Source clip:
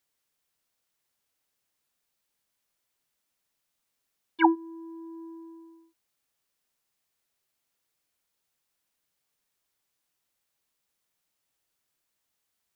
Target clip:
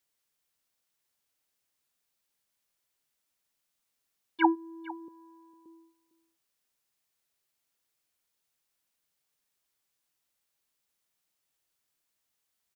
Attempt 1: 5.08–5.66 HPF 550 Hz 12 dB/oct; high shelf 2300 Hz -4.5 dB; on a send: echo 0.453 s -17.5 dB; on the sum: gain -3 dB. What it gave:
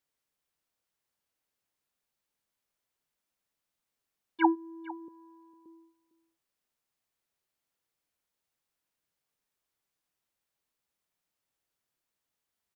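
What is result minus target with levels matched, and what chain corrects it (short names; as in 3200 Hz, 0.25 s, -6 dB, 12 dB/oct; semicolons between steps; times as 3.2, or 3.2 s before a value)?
4000 Hz band -4.0 dB
5.08–5.66 HPF 550 Hz 12 dB/oct; high shelf 2300 Hz +2.5 dB; on a send: echo 0.453 s -17.5 dB; on the sum: gain -3 dB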